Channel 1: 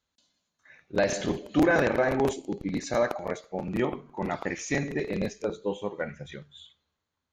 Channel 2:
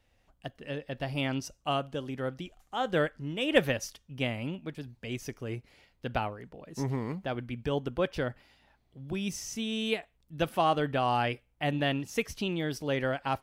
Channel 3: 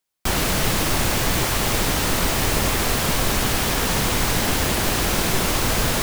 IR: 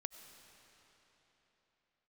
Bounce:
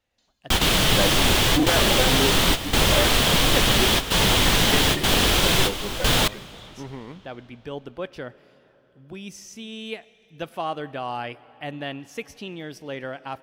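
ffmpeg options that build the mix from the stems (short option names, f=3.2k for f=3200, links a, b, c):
-filter_complex "[0:a]asplit=2[a][b];[b]adelay=3.4,afreqshift=-2[c];[a][c]amix=inputs=2:normalize=1,volume=-1.5dB[d];[1:a]lowshelf=f=120:g=-10,volume=-8.5dB,asplit=3[e][f][g];[f]volume=-5dB[h];[2:a]equalizer=f=3.3k:t=o:w=0.59:g=9.5,flanger=delay=1.9:depth=4.9:regen=-71:speed=0.76:shape=sinusoidal,adelay=250,volume=-0.5dB,asplit=2[i][j];[j]volume=-7dB[k];[g]apad=whole_len=276820[l];[i][l]sidechaingate=range=-33dB:threshold=-58dB:ratio=16:detection=peak[m];[3:a]atrim=start_sample=2205[n];[h][k]amix=inputs=2:normalize=0[o];[o][n]afir=irnorm=-1:irlink=0[p];[d][e][m][p]amix=inputs=4:normalize=0,highshelf=f=8.6k:g=-3.5,dynaudnorm=f=100:g=3:m=3.5dB"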